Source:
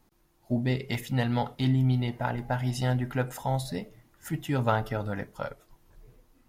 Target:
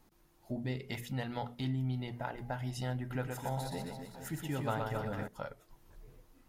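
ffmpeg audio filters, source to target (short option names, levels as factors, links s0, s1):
-filter_complex "[0:a]bandreject=f=60:t=h:w=6,bandreject=f=120:t=h:w=6,bandreject=f=180:t=h:w=6,bandreject=f=240:t=h:w=6,acompressor=threshold=0.00316:ratio=1.5,asettb=1/sr,asplit=3[s0][s1][s2];[s0]atrim=end=2.984[s3];[s1]atrim=start=2.98:end=5.28,asetpts=PTS-STARTPTS,afade=t=in:d=0.004:c=qsin,afade=t=out:st=2.296:d=0.004:c=qsin,aecho=1:1:120|270|457.5|691.9|984.8:0.631|0.398|0.251|0.158|0.1,atrim=end_sample=101430[s4];[s2]atrim=start=5.276[s5];[s3][s4]acrossfade=d=0.004:c1=hsin:c2=qsin[s6];[s6][s5]acrossfade=d=0.004:c1=qsin:c2=hsin"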